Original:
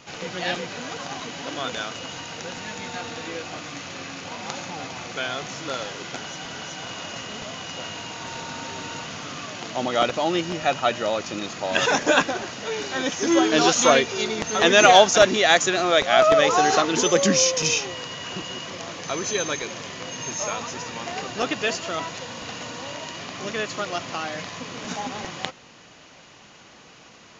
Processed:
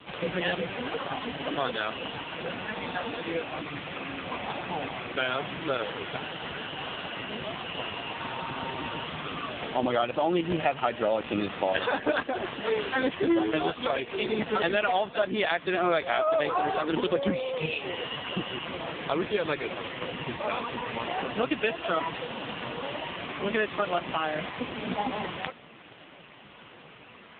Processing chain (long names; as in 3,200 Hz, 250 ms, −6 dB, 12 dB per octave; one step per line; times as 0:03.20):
downward compressor 16 to 1, threshold −25 dBFS, peak gain reduction 17.5 dB
level +5 dB
AMR narrowband 5.15 kbit/s 8,000 Hz